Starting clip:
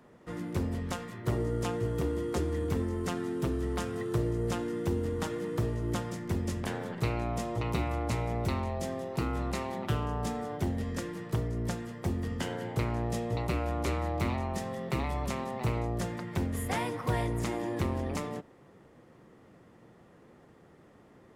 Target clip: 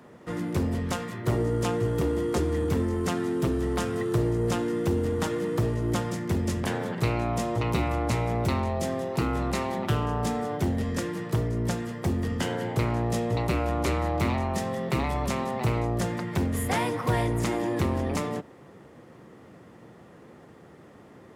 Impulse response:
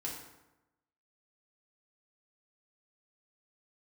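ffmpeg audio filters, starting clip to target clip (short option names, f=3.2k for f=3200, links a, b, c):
-filter_complex "[0:a]highpass=66,asplit=2[a][b];[b]asoftclip=type=tanh:threshold=-32.5dB,volume=-4dB[c];[a][c]amix=inputs=2:normalize=0,volume=3dB"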